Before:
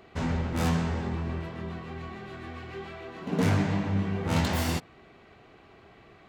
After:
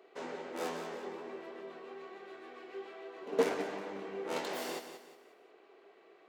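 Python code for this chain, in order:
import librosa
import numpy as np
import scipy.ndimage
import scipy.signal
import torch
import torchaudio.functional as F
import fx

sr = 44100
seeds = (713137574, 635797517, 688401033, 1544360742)

y = fx.ladder_highpass(x, sr, hz=350.0, resonance_pct=50)
y = fx.echo_feedback(y, sr, ms=179, feedback_pct=36, wet_db=-9.5)
y = fx.upward_expand(y, sr, threshold_db=-37.0, expansion=2.5)
y = y * librosa.db_to_amplitude(9.0)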